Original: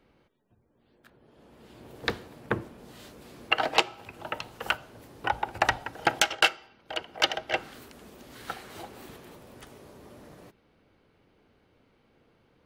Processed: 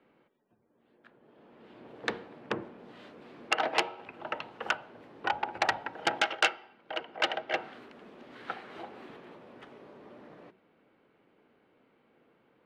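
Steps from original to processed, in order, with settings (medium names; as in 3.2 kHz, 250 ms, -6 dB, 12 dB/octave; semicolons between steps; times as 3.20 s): low-pass 11 kHz; three-band isolator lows -20 dB, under 160 Hz, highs -24 dB, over 3.4 kHz; de-hum 93.52 Hz, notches 10; transformer saturation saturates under 3.1 kHz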